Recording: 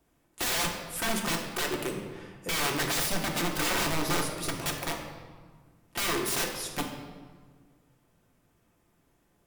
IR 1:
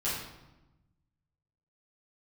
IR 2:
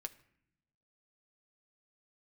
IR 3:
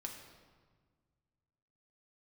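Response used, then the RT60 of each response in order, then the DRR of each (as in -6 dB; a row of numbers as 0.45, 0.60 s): 3; 1.0 s, not exponential, 1.6 s; -11.0, 6.5, 1.0 dB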